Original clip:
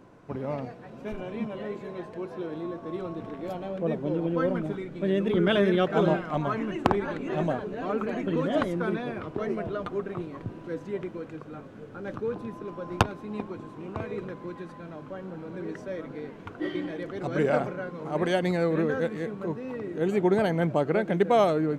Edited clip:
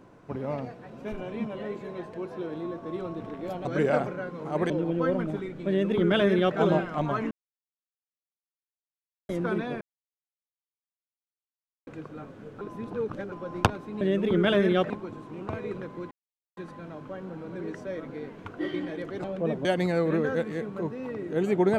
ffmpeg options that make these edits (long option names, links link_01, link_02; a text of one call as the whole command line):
ffmpeg -i in.wav -filter_complex "[0:a]asplit=14[link_01][link_02][link_03][link_04][link_05][link_06][link_07][link_08][link_09][link_10][link_11][link_12][link_13][link_14];[link_01]atrim=end=3.652[link_15];[link_02]atrim=start=17.248:end=18.302[link_16];[link_03]atrim=start=4.058:end=6.67,asetpts=PTS-STARTPTS,afade=type=out:start_time=2.608:duration=0.004:curve=hsin[link_17];[link_04]atrim=start=6.67:end=8.65,asetpts=PTS-STARTPTS,volume=0[link_18];[link_05]atrim=start=8.65:end=9.17,asetpts=PTS-STARTPTS,afade=type=in:duration=0.004:curve=hsin,afade=type=out:start_time=0.516:duration=0.004:curve=hsin[link_19];[link_06]atrim=start=9.17:end=11.23,asetpts=PTS-STARTPTS,volume=0[link_20];[link_07]atrim=start=11.23:end=11.972,asetpts=PTS-STARTPTS,afade=type=in:duration=0.004:curve=hsin[link_21];[link_08]atrim=start=11.968:end=12.682,asetpts=PTS-STARTPTS,areverse[link_22];[link_09]atrim=start=12.678:end=13.372[link_23];[link_10]atrim=start=5.038:end=5.932[link_24];[link_11]atrim=start=13.368:end=14.58,asetpts=PTS-STARTPTS,afade=type=out:start_time=1.208:duration=0.004:curve=hsin,apad=pad_dur=0.46[link_25];[link_12]atrim=start=14.58:end=17.252,asetpts=PTS-STARTPTS,afade=type=in:duration=0.004:curve=hsin[link_26];[link_13]atrim=start=3.648:end=4.062[link_27];[link_14]atrim=start=18.298[link_28];[link_15][link_16]acrossfade=duration=0.004:curve1=hsin:curve2=hsin[link_29];[link_17][link_18][link_19][link_20][link_21]concat=n=5:v=0:a=1[link_30];[link_29][link_30]acrossfade=duration=0.004:curve1=hsin:curve2=hsin[link_31];[link_31][link_22]acrossfade=duration=0.004:curve1=hsin:curve2=hsin[link_32];[link_32][link_23]acrossfade=duration=0.004:curve1=hsin:curve2=hsin[link_33];[link_33][link_24]acrossfade=duration=0.004:curve1=hsin:curve2=hsin[link_34];[link_25][link_26]concat=n=2:v=0:a=1[link_35];[link_34][link_35]acrossfade=duration=0.004:curve1=hsin:curve2=hsin[link_36];[link_36][link_27]acrossfade=duration=0.004:curve1=hsin:curve2=hsin[link_37];[link_37][link_28]acrossfade=duration=0.004:curve1=hsin:curve2=hsin" out.wav